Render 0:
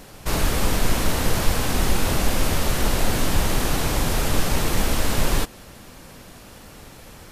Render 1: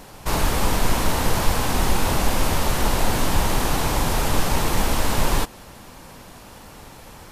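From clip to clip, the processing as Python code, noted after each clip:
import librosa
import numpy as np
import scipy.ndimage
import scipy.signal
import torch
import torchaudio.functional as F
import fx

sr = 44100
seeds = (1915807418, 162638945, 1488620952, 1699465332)

y = fx.peak_eq(x, sr, hz=920.0, db=6.0, octaves=0.63)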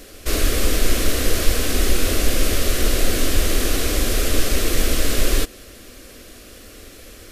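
y = fx.fixed_phaser(x, sr, hz=370.0, stages=4)
y = y * 10.0 ** (4.0 / 20.0)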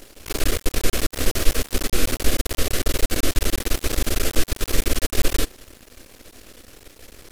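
y = np.maximum(x, 0.0)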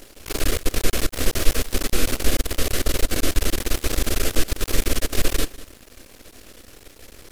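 y = x + 10.0 ** (-19.0 / 20.0) * np.pad(x, (int(195 * sr / 1000.0), 0))[:len(x)]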